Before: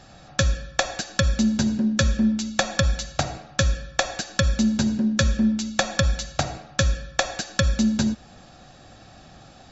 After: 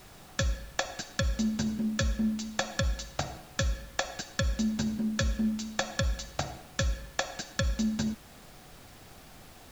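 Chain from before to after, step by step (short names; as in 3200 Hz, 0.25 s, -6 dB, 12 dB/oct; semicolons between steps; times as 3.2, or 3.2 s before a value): added noise pink -44 dBFS; gain -8.5 dB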